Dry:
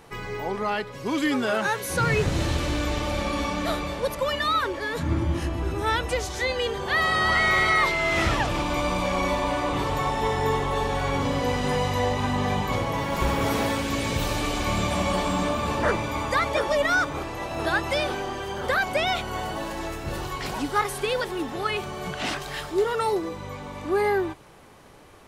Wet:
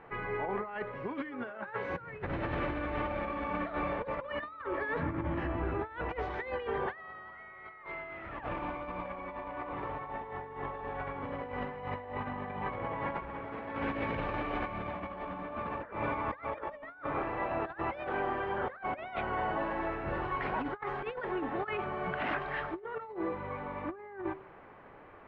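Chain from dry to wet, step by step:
low-pass filter 2,100 Hz 24 dB per octave
low-shelf EQ 280 Hz −8.5 dB
hum removal 76.56 Hz, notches 17
compressor whose output falls as the input rises −32 dBFS, ratio −0.5
level −4 dB

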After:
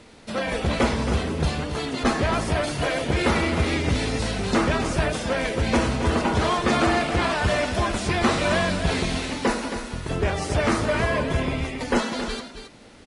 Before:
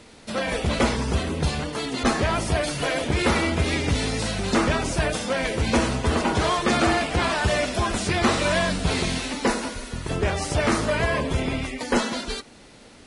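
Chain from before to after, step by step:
high-shelf EQ 4,500 Hz −5 dB
single-tap delay 270 ms −9 dB

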